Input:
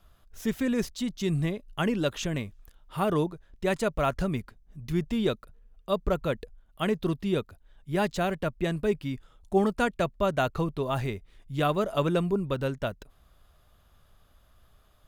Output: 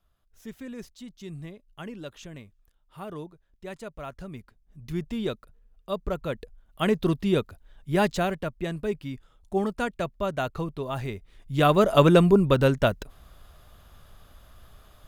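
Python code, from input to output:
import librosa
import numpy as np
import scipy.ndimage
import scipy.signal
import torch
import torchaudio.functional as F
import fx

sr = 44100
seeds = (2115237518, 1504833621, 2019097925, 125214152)

y = fx.gain(x, sr, db=fx.line((4.2, -12.0), (4.84, -3.0), (6.21, -3.0), (6.92, 4.0), (8.09, 4.0), (8.51, -2.5), (10.99, -2.5), (11.91, 9.0)))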